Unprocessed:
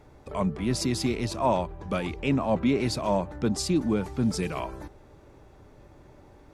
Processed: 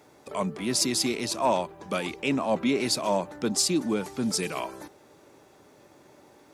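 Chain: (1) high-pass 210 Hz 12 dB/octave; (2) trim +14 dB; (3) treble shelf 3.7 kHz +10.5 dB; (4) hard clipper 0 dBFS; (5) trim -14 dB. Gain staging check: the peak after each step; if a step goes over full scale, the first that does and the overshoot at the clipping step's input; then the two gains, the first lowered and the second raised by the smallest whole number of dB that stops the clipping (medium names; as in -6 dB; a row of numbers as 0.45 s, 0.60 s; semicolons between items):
-12.0 dBFS, +2.0 dBFS, +3.5 dBFS, 0.0 dBFS, -14.0 dBFS; step 2, 3.5 dB; step 2 +10 dB, step 5 -10 dB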